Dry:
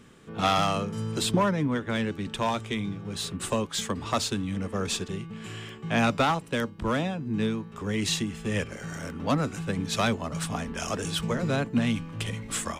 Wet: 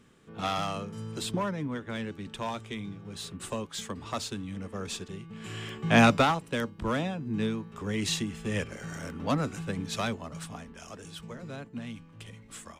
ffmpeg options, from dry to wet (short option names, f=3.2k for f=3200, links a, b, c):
-af "volume=5dB,afade=t=in:st=5.24:d=0.75:silence=0.251189,afade=t=out:st=5.99:d=0.35:silence=0.421697,afade=t=out:st=9.47:d=1.32:silence=0.266073"